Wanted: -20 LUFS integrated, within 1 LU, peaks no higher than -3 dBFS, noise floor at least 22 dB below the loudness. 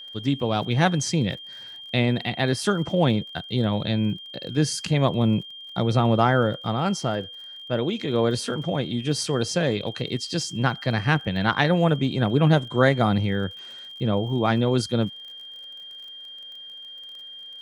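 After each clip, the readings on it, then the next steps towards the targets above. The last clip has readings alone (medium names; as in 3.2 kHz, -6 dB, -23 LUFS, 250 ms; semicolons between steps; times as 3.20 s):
tick rate 37 per s; steady tone 3.2 kHz; tone level -38 dBFS; loudness -23.5 LUFS; peak level -3.5 dBFS; loudness target -20.0 LUFS
-> de-click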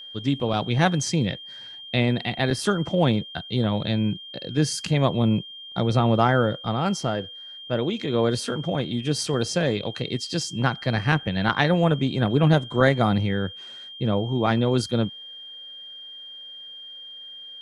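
tick rate 0.057 per s; steady tone 3.2 kHz; tone level -38 dBFS
-> band-stop 3.2 kHz, Q 30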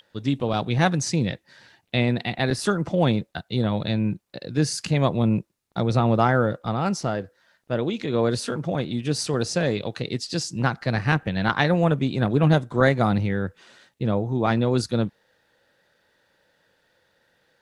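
steady tone not found; loudness -24.0 LUFS; peak level -3.0 dBFS; loudness target -20.0 LUFS
-> trim +4 dB; peak limiter -3 dBFS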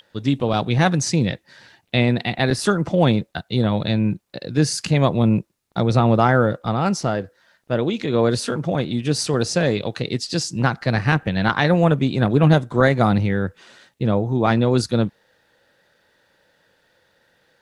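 loudness -20.0 LUFS; peak level -3.0 dBFS; noise floor -64 dBFS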